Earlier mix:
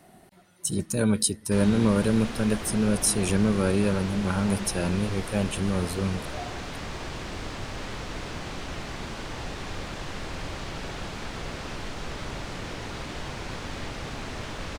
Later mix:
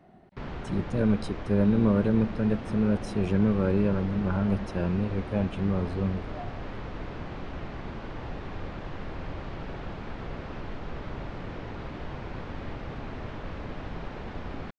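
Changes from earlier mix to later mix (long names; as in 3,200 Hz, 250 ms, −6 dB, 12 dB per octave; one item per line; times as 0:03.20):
background: entry −1.15 s
master: add head-to-tape spacing loss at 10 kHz 34 dB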